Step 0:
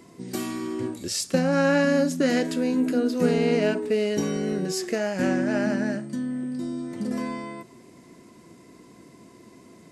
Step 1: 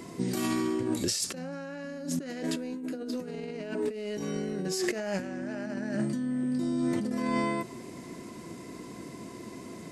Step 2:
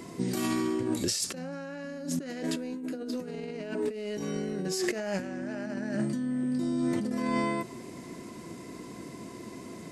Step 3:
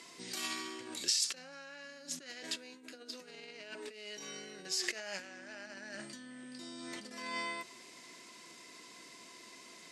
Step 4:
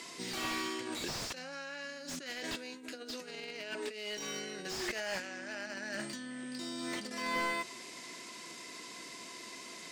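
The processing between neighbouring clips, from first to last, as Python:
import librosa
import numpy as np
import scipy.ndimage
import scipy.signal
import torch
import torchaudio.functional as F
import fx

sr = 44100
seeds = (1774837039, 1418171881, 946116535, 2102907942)

y1 = fx.over_compress(x, sr, threshold_db=-33.0, ratio=-1.0)
y2 = y1
y3 = fx.bandpass_q(y2, sr, hz=4000.0, q=0.83)
y3 = y3 * librosa.db_to_amplitude(2.0)
y4 = fx.slew_limit(y3, sr, full_power_hz=23.0)
y4 = y4 * librosa.db_to_amplitude(6.5)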